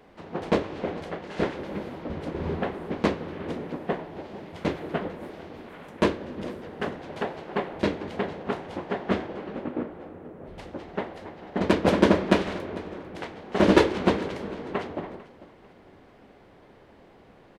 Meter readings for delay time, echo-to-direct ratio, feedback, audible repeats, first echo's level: 447 ms, −18.5 dB, 37%, 2, −19.0 dB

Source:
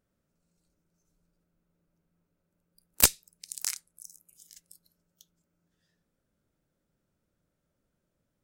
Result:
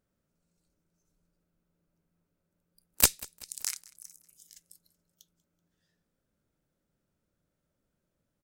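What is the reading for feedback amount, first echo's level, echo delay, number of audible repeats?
45%, −22.0 dB, 190 ms, 2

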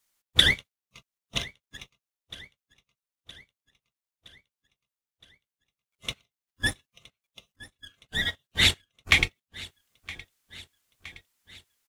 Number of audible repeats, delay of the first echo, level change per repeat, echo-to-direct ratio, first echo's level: 4, 967 ms, −4.5 dB, −18.0 dB, −20.0 dB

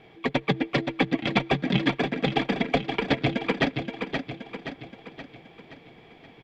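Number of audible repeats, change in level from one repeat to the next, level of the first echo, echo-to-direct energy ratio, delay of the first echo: 5, −6.0 dB, −6.0 dB, −5.0 dB, 524 ms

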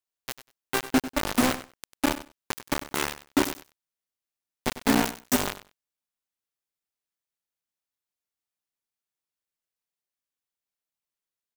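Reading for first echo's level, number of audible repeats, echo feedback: −14.0 dB, 2, 15%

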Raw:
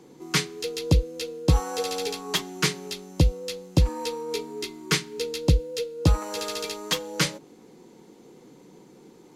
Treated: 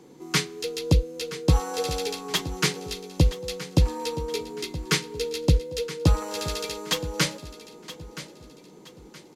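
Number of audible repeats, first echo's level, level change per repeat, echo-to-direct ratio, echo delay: 3, −14.5 dB, −9.0 dB, −14.0 dB, 972 ms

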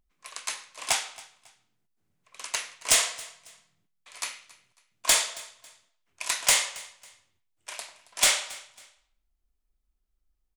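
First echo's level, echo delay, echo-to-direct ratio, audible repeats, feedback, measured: −21.0 dB, 274 ms, −20.5 dB, 2, 31%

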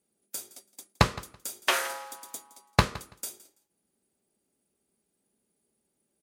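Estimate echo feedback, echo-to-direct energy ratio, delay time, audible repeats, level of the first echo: 17%, −19.0 dB, 166 ms, 2, −19.0 dB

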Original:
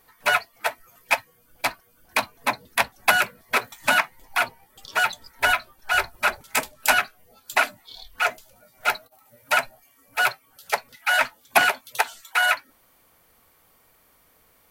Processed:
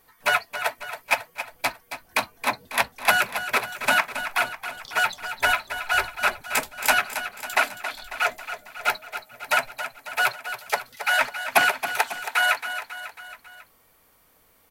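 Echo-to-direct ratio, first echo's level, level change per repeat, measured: −9.0 dB, −10.5 dB, −5.0 dB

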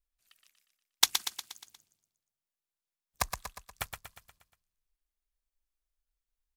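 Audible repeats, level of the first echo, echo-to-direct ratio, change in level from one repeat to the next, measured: 6, −7.0 dB, −5.5 dB, −5.5 dB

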